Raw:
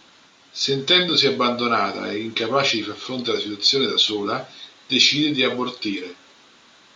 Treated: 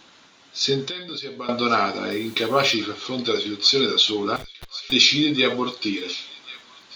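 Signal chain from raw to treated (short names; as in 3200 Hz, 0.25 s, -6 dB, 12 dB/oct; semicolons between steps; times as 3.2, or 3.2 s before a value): 0.84–1.49 compressor 16:1, threshold -29 dBFS, peak gain reduction 18.5 dB; 4.36–4.92 Schmitt trigger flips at -31 dBFS; thin delay 1.091 s, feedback 52%, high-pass 1700 Hz, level -16 dB; 2.11–2.74 requantised 8-bit, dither triangular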